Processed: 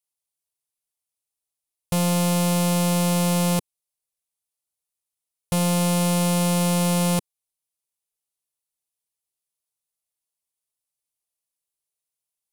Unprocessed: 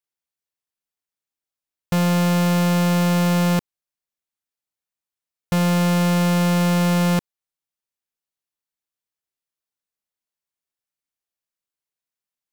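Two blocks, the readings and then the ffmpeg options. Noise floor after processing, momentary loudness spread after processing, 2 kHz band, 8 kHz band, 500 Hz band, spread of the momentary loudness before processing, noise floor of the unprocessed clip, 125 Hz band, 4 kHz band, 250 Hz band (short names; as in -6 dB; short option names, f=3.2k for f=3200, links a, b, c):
under -85 dBFS, 4 LU, -5.5 dB, +6.0 dB, -1.5 dB, 4 LU, under -85 dBFS, -3.5 dB, 0.0 dB, -3.5 dB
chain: -af "equalizer=f=250:t=o:w=0.67:g=-11,equalizer=f=1.6k:t=o:w=0.67:g=-11,equalizer=f=10k:t=o:w=0.67:g=10"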